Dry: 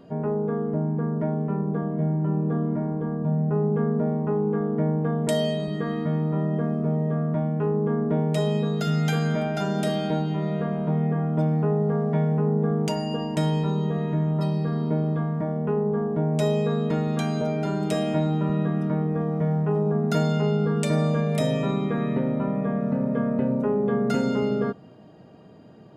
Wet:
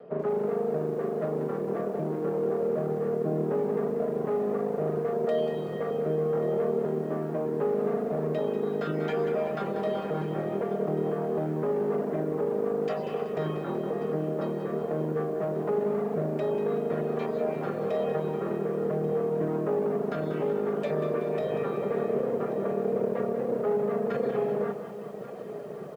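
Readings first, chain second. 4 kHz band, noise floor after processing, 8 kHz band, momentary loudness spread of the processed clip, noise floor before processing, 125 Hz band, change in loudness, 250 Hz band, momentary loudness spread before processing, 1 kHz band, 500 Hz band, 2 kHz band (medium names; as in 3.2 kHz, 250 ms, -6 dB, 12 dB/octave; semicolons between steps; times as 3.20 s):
under -10 dB, -36 dBFS, under -15 dB, 3 LU, -46 dBFS, -13.0 dB, -4.5 dB, -8.5 dB, 3 LU, -3.0 dB, +0.5 dB, -5.5 dB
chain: comb filter that takes the minimum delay 1.6 ms; high-pass 160 Hz 24 dB/octave; reverb removal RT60 0.8 s; low-pass 2.1 kHz 12 dB/octave; peaking EQ 430 Hz +11 dB 0.47 oct; reverse; upward compressor, threshold -28 dBFS; reverse; peak limiter -19.5 dBFS, peak gain reduction 9 dB; on a send: delay 1136 ms -16 dB; on the sum: bit-crushed delay 189 ms, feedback 55%, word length 9-bit, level -9 dB; trim -1 dB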